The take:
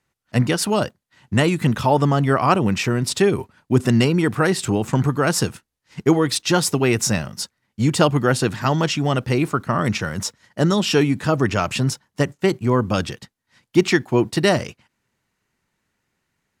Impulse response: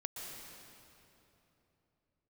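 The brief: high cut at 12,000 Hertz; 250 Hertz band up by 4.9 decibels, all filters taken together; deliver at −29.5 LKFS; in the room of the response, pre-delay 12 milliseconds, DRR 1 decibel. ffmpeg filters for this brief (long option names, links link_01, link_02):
-filter_complex "[0:a]lowpass=12000,equalizer=frequency=250:width_type=o:gain=6.5,asplit=2[link_01][link_02];[1:a]atrim=start_sample=2205,adelay=12[link_03];[link_02][link_03]afir=irnorm=-1:irlink=0,volume=-0.5dB[link_04];[link_01][link_04]amix=inputs=2:normalize=0,volume=-15dB"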